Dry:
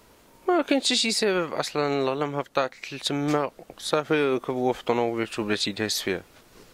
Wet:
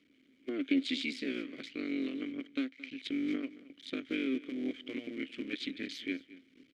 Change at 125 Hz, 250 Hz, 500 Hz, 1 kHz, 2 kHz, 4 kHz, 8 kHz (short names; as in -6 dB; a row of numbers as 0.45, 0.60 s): -22.0 dB, -6.0 dB, -18.5 dB, -29.5 dB, -10.5 dB, -14.0 dB, under -25 dB